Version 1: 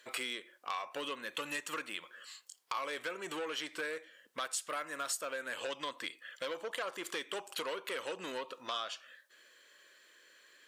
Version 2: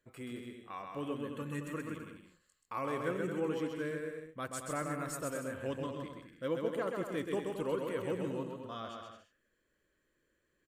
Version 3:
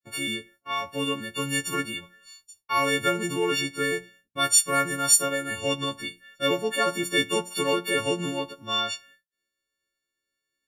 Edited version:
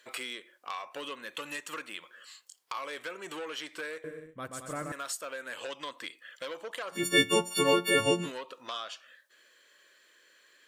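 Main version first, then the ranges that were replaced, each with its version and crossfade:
1
4.04–4.92 s: from 2
6.98–8.24 s: from 3, crossfade 0.16 s

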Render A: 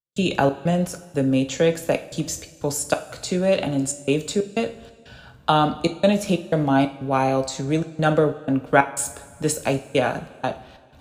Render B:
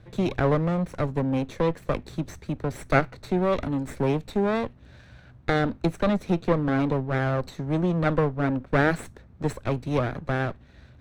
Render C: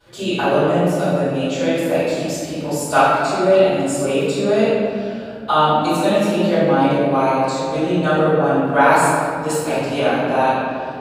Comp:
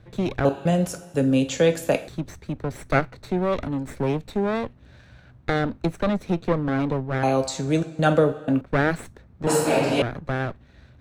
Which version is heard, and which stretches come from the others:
B
0.45–2.08 s: from A
7.23–8.61 s: from A
9.47–10.02 s: from C

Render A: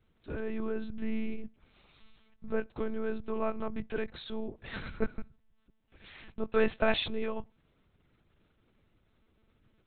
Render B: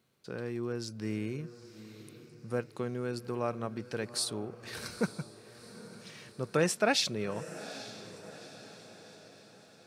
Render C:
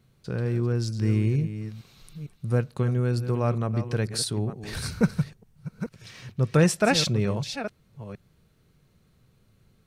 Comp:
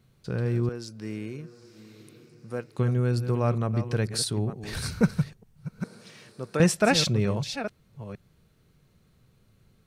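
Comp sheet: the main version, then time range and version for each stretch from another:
C
0.69–2.78 s: from B
5.84–6.60 s: from B
not used: A

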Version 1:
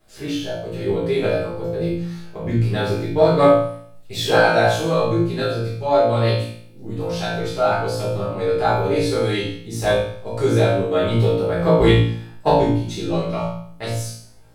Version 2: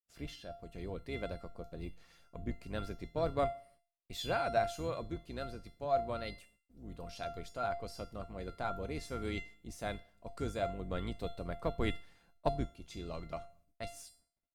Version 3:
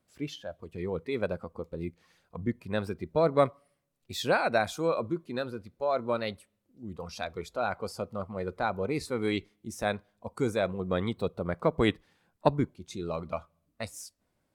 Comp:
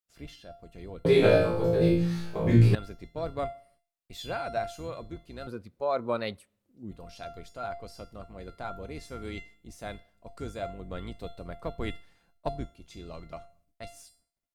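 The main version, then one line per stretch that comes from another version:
2
1.05–2.75 s: from 1
5.47–6.91 s: from 3

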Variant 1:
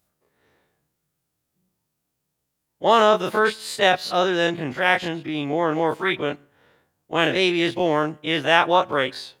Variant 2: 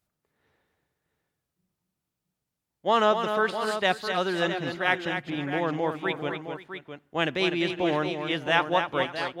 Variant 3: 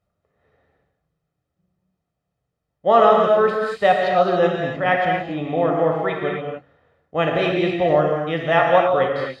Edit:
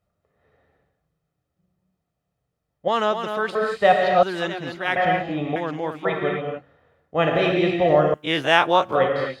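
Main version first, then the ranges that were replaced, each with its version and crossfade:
3
2.88–3.55 s: from 2
4.23–4.96 s: from 2
5.56–6.05 s: from 2
8.14–8.95 s: from 1

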